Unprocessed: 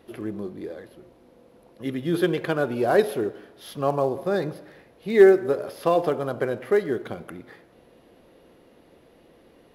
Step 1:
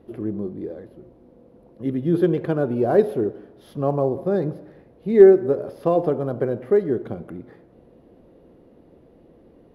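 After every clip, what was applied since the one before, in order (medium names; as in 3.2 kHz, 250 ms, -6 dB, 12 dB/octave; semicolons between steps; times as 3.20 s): tilt shelf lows +9.5 dB, about 930 Hz; trim -3 dB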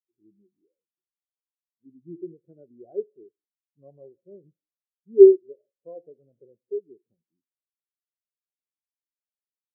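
spectral contrast expander 2.5:1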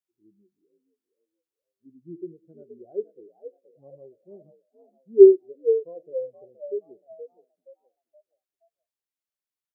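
frequency-shifting echo 473 ms, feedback 36%, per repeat +65 Hz, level -11 dB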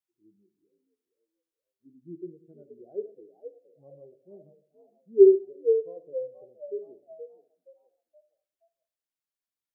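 simulated room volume 680 m³, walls furnished, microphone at 0.59 m; trim -3 dB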